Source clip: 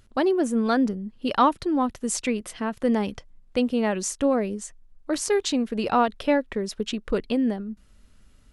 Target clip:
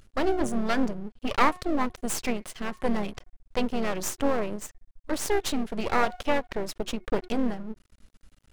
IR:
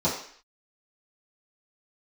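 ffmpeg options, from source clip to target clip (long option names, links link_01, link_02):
-filter_complex "[0:a]asplit=2[link_01][link_02];[link_02]asetrate=37084,aresample=44100,atempo=1.18921,volume=-14dB[link_03];[link_01][link_03]amix=inputs=2:normalize=0,bandreject=frequency=363:width_type=h:width=4,bandreject=frequency=726:width_type=h:width=4,bandreject=frequency=1089:width_type=h:width=4,bandreject=frequency=1452:width_type=h:width=4,bandreject=frequency=1815:width_type=h:width=4,bandreject=frequency=2178:width_type=h:width=4,aeval=exprs='max(val(0),0)':channel_layout=same,volume=1.5dB"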